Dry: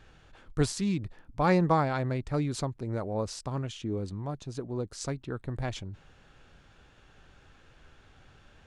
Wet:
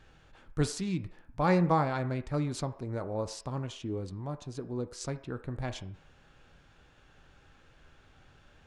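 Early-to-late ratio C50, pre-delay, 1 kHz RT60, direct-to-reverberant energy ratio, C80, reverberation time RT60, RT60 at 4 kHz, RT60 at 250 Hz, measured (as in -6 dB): 14.0 dB, 3 ms, 0.60 s, 9.0 dB, 17.5 dB, 0.60 s, 0.65 s, 0.45 s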